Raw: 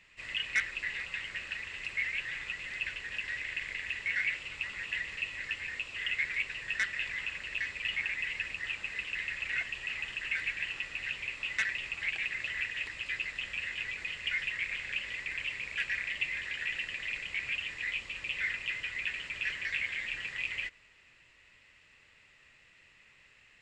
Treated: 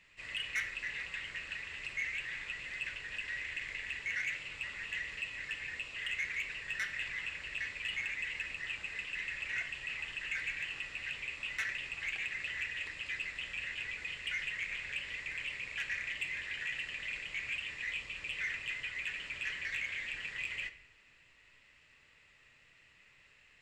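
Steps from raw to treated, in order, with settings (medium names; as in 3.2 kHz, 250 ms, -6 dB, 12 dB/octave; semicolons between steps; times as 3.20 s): saturation -25.5 dBFS, distortion -17 dB; simulated room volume 150 m³, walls mixed, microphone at 0.36 m; trim -3 dB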